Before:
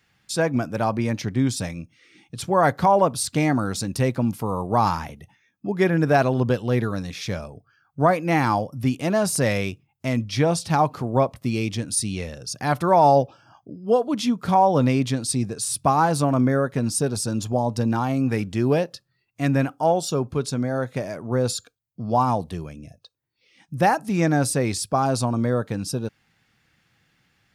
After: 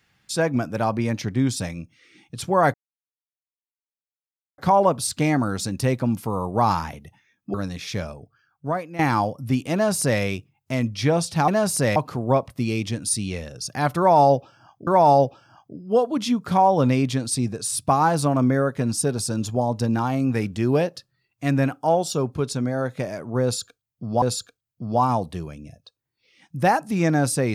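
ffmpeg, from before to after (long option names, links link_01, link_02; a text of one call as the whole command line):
ffmpeg -i in.wav -filter_complex "[0:a]asplit=8[link_01][link_02][link_03][link_04][link_05][link_06][link_07][link_08];[link_01]atrim=end=2.74,asetpts=PTS-STARTPTS,afade=type=out:start_time=2.736:duration=0.004:curve=hsin,apad=pad_dur=1.84[link_09];[link_02]atrim=start=2.74:end=5.702,asetpts=PTS-STARTPTS,afade=type=in:duration=0.004:curve=hsin[link_10];[link_03]atrim=start=6.878:end=8.33,asetpts=PTS-STARTPTS,afade=type=out:start_time=0.602:duration=0.85:silence=0.177828[link_11];[link_04]atrim=start=8.33:end=10.822,asetpts=PTS-STARTPTS,afade=type=in:duration=0.004:curve=hsin:silence=0.177828[link_12];[link_05]atrim=start=9.068:end=9.552[link_13];[link_06]atrim=start=10.818:end=13.732[link_14];[link_07]atrim=start=12.838:end=22.192[link_15];[link_08]atrim=start=21.398[link_16];[link_09][link_10]concat=n=2:v=0:a=1[link_17];[link_11][link_12]concat=n=2:v=0:a=1[link_18];[link_17][link_18]acrossfade=duration=0.004:curve1=hsin:curve2=hsin[link_19];[link_19][link_13]acrossfade=duration=0.004:curve1=hsin:curve2=hsin[link_20];[link_20][link_14]acrossfade=duration=0.004:curve1=hsin:curve2=hsin[link_21];[link_21][link_15]acrossfade=duration=0.004:curve1=hsin:curve2=hsin[link_22];[link_22][link_16]acrossfade=duration=0.004:curve1=hsin:curve2=hsin" out.wav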